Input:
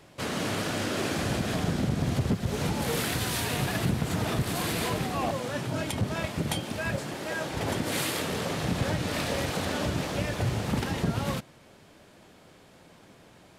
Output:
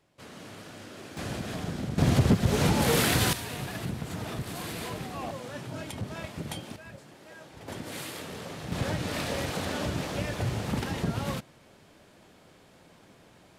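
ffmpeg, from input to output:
ffmpeg -i in.wav -af "asetnsamples=nb_out_samples=441:pad=0,asendcmd='1.17 volume volume -6dB;1.98 volume volume 5dB;3.33 volume volume -7dB;6.76 volume volume -16dB;7.68 volume volume -9dB;8.72 volume volume -2dB',volume=-15dB" out.wav

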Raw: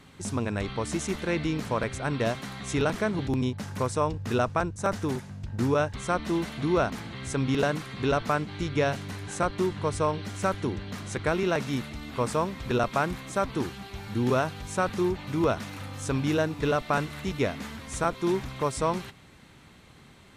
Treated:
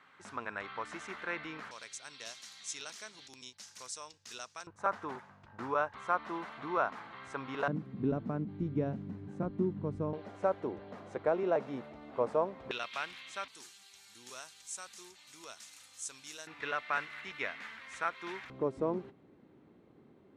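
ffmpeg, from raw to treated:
ffmpeg -i in.wav -af "asetnsamples=nb_out_samples=441:pad=0,asendcmd='1.71 bandpass f 6000;4.67 bandpass f 1100;7.68 bandpass f 220;10.13 bandpass f 600;12.71 bandpass f 3000;13.48 bandpass f 7400;16.47 bandpass f 1900;18.5 bandpass f 350',bandpass=frequency=1400:width_type=q:width=1.7:csg=0" out.wav

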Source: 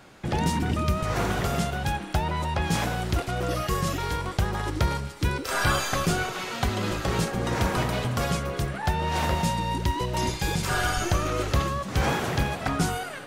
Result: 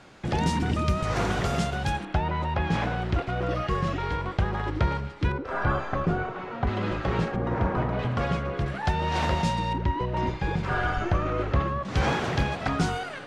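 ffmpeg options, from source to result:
ffmpeg -i in.wav -af "asetnsamples=nb_out_samples=441:pad=0,asendcmd='2.05 lowpass f 2800;5.32 lowpass f 1300;6.67 lowpass f 2500;7.36 lowpass f 1400;7.99 lowpass f 2600;8.66 lowpass f 5400;9.73 lowpass f 2000;11.85 lowpass f 5300',lowpass=7400" out.wav

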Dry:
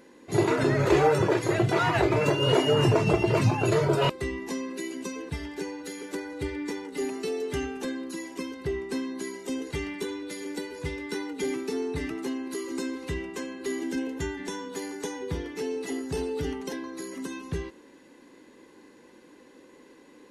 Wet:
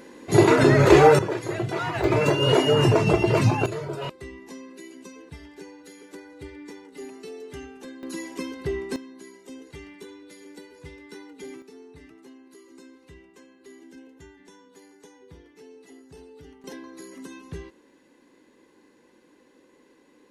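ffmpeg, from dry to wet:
ffmpeg -i in.wav -af "asetnsamples=nb_out_samples=441:pad=0,asendcmd='1.19 volume volume -4dB;2.04 volume volume 3dB;3.66 volume volume -8.5dB;8.03 volume volume 2dB;8.96 volume volume -10dB;11.62 volume volume -16.5dB;16.64 volume volume -5dB',volume=7.5dB" out.wav

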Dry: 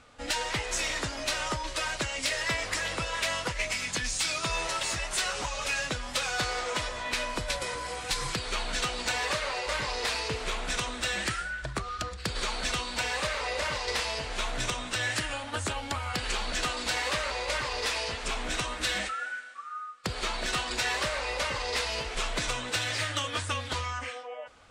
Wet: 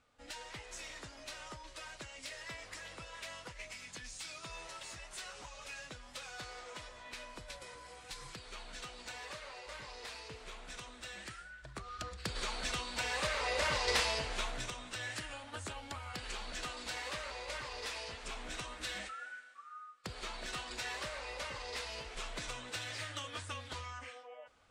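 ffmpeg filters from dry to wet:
ffmpeg -i in.wav -af "volume=-0.5dB,afade=type=in:start_time=11.63:duration=0.53:silence=0.334965,afade=type=in:start_time=12.94:duration=1.02:silence=0.473151,afade=type=out:start_time=13.96:duration=0.73:silence=0.281838" out.wav

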